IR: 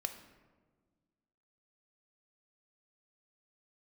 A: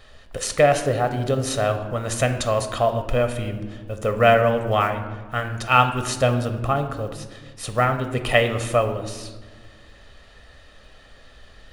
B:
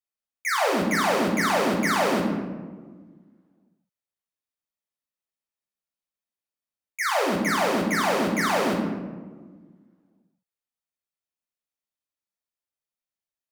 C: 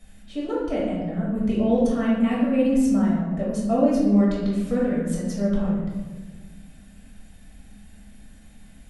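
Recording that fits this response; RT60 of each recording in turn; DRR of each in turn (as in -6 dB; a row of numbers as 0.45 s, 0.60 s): A; 1.5 s, 1.5 s, 1.5 s; 7.0 dB, -2.0 dB, -6.5 dB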